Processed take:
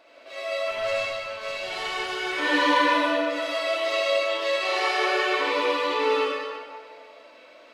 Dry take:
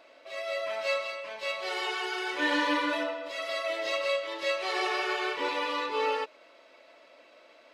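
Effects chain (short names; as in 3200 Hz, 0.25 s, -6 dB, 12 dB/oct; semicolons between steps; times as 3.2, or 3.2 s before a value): 0.71–2.25 tube stage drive 23 dB, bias 0.6; reverb RT60 1.7 s, pre-delay 57 ms, DRR -5 dB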